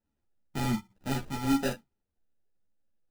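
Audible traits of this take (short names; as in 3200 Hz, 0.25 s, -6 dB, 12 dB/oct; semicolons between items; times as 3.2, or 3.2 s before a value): a buzz of ramps at a fixed pitch in blocks of 8 samples; phasing stages 2, 1.3 Hz, lowest notch 460–1100 Hz; aliases and images of a low sample rate 1100 Hz, jitter 0%; a shimmering, thickened sound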